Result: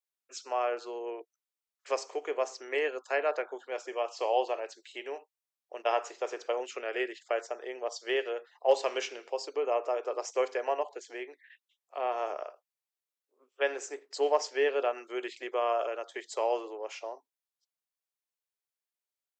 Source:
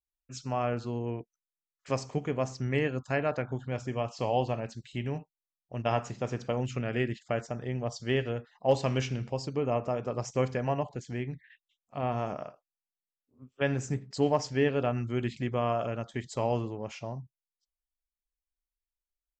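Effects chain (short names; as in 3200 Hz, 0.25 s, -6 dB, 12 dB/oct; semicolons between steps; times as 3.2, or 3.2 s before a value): steep high-pass 370 Hz 48 dB/oct; gain +1 dB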